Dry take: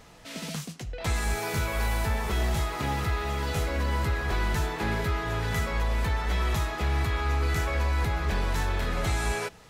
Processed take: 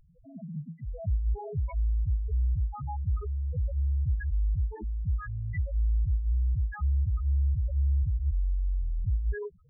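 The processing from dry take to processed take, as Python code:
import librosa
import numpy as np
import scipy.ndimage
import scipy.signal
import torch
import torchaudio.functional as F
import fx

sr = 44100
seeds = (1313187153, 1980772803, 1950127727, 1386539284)

y = fx.spec_topn(x, sr, count=2)
y = F.gain(torch.from_numpy(y), 2.0).numpy()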